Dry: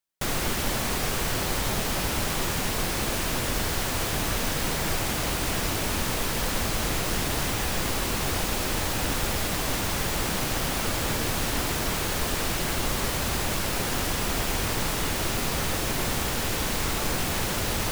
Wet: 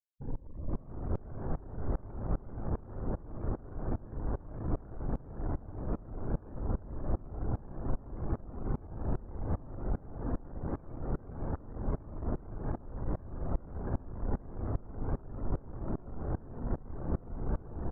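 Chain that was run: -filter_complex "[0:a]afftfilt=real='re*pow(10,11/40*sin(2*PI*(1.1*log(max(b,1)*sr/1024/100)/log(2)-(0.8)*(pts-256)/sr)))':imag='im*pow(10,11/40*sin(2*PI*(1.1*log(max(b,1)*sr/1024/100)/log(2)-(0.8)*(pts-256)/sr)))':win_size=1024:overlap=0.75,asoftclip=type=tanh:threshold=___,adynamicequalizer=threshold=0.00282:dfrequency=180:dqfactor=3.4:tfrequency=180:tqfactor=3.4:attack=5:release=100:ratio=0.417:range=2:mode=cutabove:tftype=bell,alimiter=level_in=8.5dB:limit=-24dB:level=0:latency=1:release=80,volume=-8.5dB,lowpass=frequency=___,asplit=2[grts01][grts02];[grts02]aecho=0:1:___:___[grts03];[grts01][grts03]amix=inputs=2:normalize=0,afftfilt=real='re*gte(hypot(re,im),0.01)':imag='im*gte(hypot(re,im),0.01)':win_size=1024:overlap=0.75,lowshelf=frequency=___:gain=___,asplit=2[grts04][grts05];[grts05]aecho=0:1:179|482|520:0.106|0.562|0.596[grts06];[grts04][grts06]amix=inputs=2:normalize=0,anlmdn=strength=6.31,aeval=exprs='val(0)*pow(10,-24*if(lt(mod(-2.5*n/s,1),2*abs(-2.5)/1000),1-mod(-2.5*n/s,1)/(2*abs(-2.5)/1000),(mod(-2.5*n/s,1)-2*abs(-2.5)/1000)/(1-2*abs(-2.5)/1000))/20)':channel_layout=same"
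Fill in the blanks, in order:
-22dB, 1400, 686, 0.708, 390, 11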